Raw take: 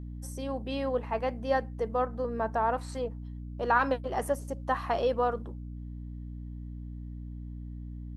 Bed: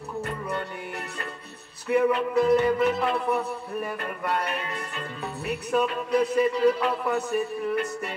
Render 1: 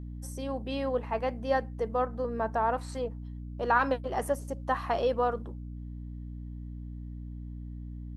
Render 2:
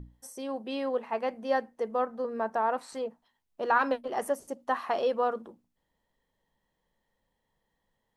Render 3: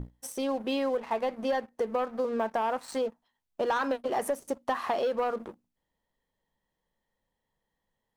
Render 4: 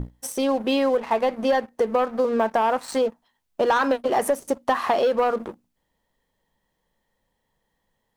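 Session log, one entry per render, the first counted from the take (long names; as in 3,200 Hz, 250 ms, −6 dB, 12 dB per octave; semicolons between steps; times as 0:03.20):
no processing that can be heard
mains-hum notches 60/120/180/240/300 Hz
leveller curve on the samples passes 2; downward compressor, threshold −26 dBFS, peak gain reduction 9.5 dB
level +8 dB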